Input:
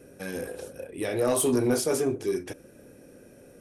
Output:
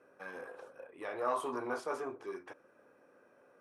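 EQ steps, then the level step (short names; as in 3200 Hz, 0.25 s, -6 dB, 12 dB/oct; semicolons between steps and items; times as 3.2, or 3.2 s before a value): band-pass 1100 Hz, Q 3.1; +3.0 dB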